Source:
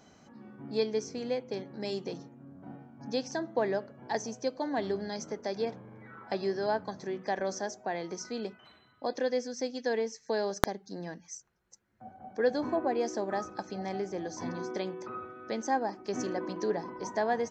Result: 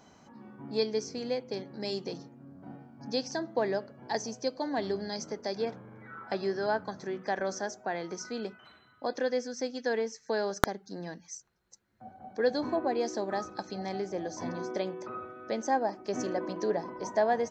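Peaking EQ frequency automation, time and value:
peaking EQ +6.5 dB 0.37 oct
960 Hz
from 0.78 s 4.7 kHz
from 5.57 s 1.4 kHz
from 11.06 s 4.1 kHz
from 14.10 s 610 Hz

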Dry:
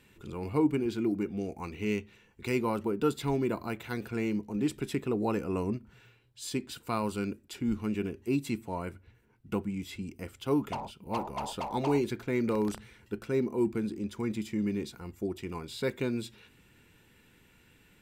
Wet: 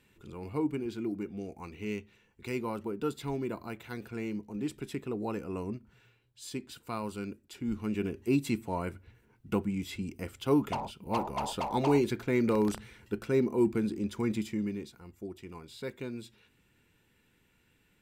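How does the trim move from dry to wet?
7.53 s -5 dB
8.17 s +2 dB
14.38 s +2 dB
14.92 s -7.5 dB

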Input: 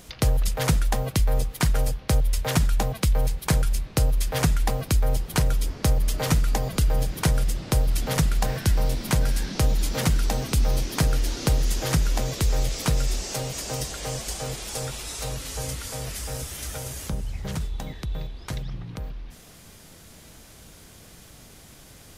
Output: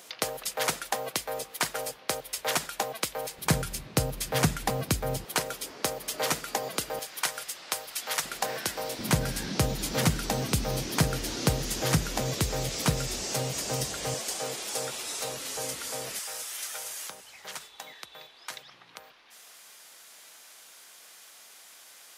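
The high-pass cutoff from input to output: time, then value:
480 Hz
from 3.38 s 130 Hz
from 5.25 s 410 Hz
from 6.99 s 930 Hz
from 8.24 s 440 Hz
from 8.99 s 110 Hz
from 14.14 s 300 Hz
from 16.19 s 890 Hz

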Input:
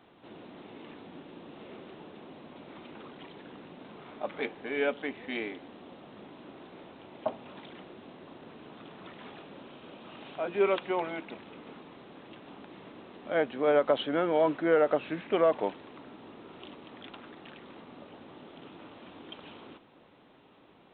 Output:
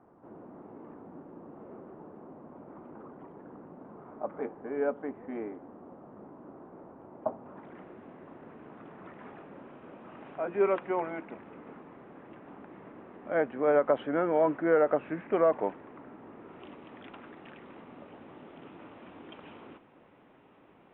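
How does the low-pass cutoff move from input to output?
low-pass 24 dB/octave
7.41 s 1.3 kHz
7.82 s 2 kHz
16.29 s 2 kHz
16.79 s 2.6 kHz

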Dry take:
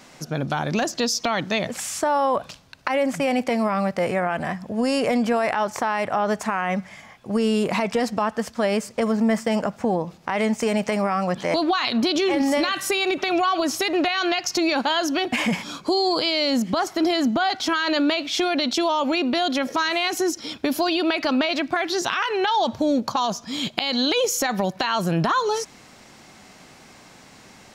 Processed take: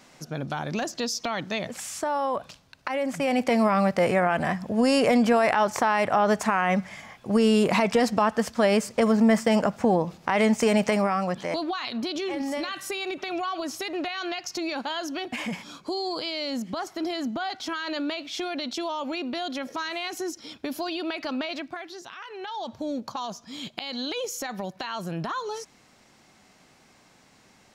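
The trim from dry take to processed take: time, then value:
3.02 s -6 dB
3.57 s +1 dB
10.86 s +1 dB
11.74 s -9 dB
21.54 s -9 dB
22.05 s -19 dB
22.86 s -10 dB

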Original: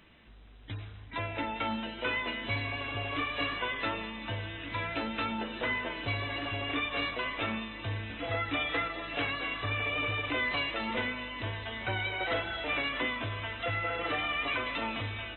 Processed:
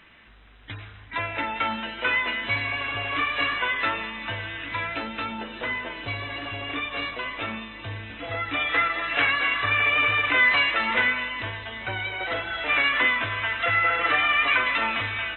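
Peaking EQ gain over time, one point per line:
peaking EQ 1.7 kHz 2.1 oct
4.57 s +10.5 dB
5.20 s +3.5 dB
8.34 s +3.5 dB
8.97 s +14.5 dB
11.18 s +14.5 dB
11.69 s +4.5 dB
12.38 s +4.5 dB
12.82 s +14 dB

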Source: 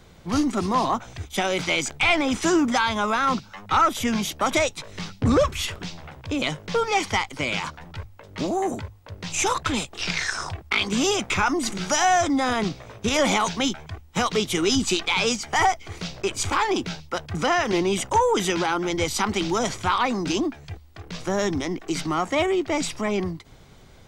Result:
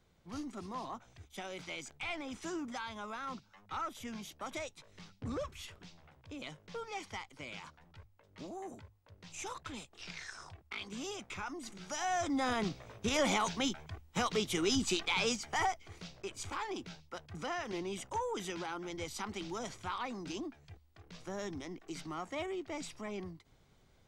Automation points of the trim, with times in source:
11.81 s -20 dB
12.43 s -10 dB
15.30 s -10 dB
16.16 s -17 dB

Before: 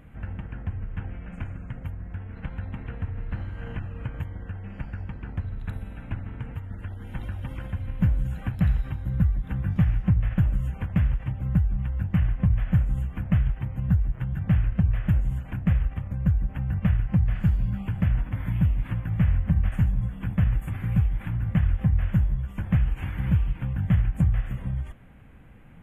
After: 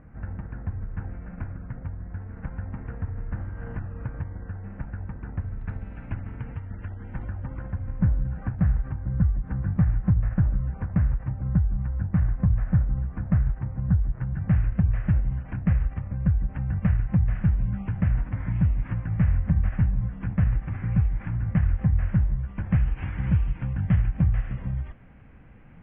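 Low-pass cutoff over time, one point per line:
low-pass 24 dB/octave
5.19 s 1.8 kHz
5.99 s 2.5 kHz
6.82 s 2.5 kHz
7.41 s 1.7 kHz
14.00 s 1.7 kHz
14.61 s 2.3 kHz
22.37 s 2.3 kHz
22.98 s 2.8 kHz

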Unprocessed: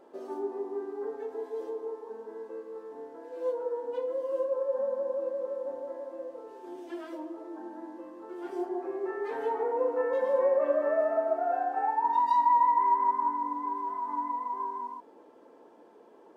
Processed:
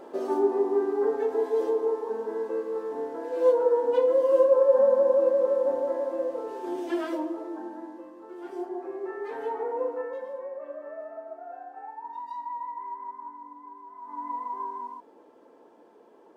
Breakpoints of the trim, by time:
7.04 s +10.5 dB
8.14 s -1 dB
9.85 s -1 dB
10.43 s -12.5 dB
13.91 s -12.5 dB
14.33 s 0 dB

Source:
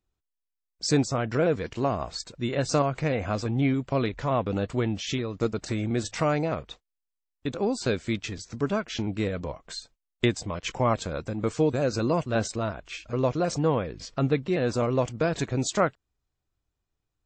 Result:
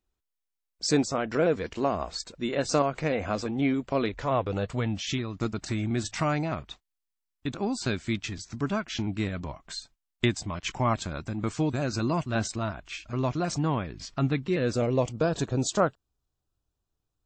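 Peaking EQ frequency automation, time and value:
peaking EQ -13.5 dB 0.4 oct
4.01 s 120 Hz
5.06 s 490 Hz
14.34 s 490 Hz
15.25 s 2.1 kHz

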